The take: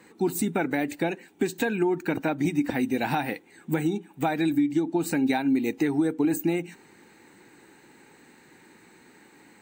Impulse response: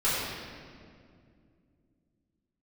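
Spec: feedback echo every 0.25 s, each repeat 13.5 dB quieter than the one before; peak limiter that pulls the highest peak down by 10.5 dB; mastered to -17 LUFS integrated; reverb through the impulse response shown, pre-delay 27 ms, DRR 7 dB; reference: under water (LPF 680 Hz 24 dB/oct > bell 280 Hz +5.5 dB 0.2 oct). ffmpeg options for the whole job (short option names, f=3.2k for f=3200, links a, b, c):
-filter_complex "[0:a]alimiter=limit=-23.5dB:level=0:latency=1,aecho=1:1:250|500:0.211|0.0444,asplit=2[a][b];[1:a]atrim=start_sample=2205,adelay=27[c];[b][c]afir=irnorm=-1:irlink=0,volume=-20dB[d];[a][d]amix=inputs=2:normalize=0,lowpass=f=680:w=0.5412,lowpass=f=680:w=1.3066,equalizer=f=280:t=o:w=0.2:g=5.5,volume=13dB"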